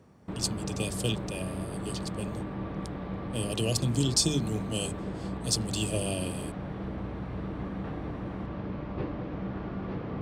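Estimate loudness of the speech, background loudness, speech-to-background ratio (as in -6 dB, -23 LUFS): -31.5 LUFS, -36.5 LUFS, 5.0 dB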